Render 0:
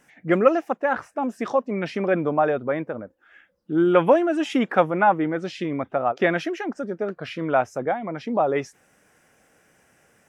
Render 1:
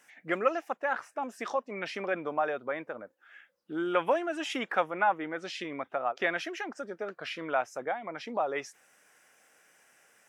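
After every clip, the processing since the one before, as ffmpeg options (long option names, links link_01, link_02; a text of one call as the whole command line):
ffmpeg -i in.wav -filter_complex "[0:a]highpass=frequency=1100:poles=1,asplit=2[link_01][link_02];[link_02]acompressor=threshold=-35dB:ratio=6,volume=-2dB[link_03];[link_01][link_03]amix=inputs=2:normalize=0,volume=-5dB" out.wav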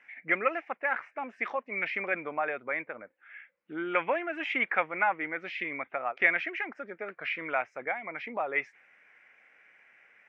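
ffmpeg -i in.wav -af "lowpass=frequency=2200:width_type=q:width=5.8,volume=-3.5dB" out.wav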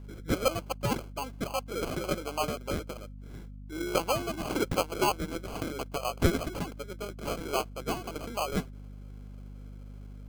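ffmpeg -i in.wav -af "acrusher=samples=24:mix=1:aa=0.000001,aeval=exprs='val(0)+0.00708*(sin(2*PI*50*n/s)+sin(2*PI*2*50*n/s)/2+sin(2*PI*3*50*n/s)/3+sin(2*PI*4*50*n/s)/4+sin(2*PI*5*50*n/s)/5)':channel_layout=same" out.wav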